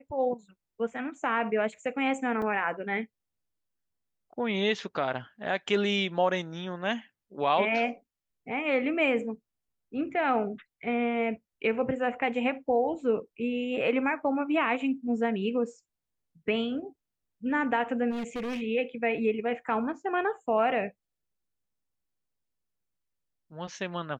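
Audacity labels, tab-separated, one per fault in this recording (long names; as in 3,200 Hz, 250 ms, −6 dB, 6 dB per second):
2.420000	2.420000	drop-out 3.4 ms
18.100000	18.620000	clipping −30.5 dBFS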